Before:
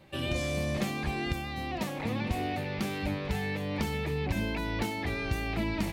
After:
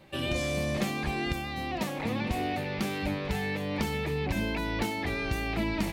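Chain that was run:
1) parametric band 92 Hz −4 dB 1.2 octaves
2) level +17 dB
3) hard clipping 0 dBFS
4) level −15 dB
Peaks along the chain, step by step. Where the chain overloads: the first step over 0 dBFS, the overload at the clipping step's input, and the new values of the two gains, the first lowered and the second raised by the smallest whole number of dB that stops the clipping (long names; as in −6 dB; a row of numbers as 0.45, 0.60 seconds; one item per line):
−19.0, −2.0, −2.0, −17.0 dBFS
no step passes full scale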